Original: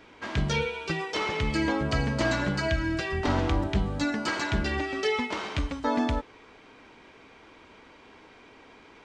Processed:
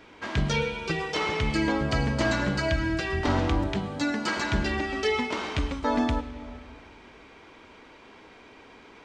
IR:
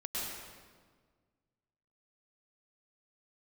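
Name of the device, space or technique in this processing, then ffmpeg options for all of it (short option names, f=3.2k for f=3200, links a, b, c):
compressed reverb return: -filter_complex "[0:a]asplit=2[a][b];[1:a]atrim=start_sample=2205[c];[b][c]afir=irnorm=-1:irlink=0,acompressor=threshold=-24dB:ratio=6,volume=-10.5dB[d];[a][d]amix=inputs=2:normalize=0,asettb=1/sr,asplit=3[e][f][g];[e]atrim=end=3.734[h];[f]atrim=start=3.73:end=4.37,asetpts=PTS-STARTPTS,afade=t=in:d=0.004:c=qsin,afade=t=out:st=0.636:d=0.004:c=qsin,highpass=150[i];[g]atrim=start=4.366[j];[h][i]acrossfade=d=0.004:c1=hsin:c2=qsin[k];[k][j]acrossfade=d=0.004:c1=qsin:c2=hsin"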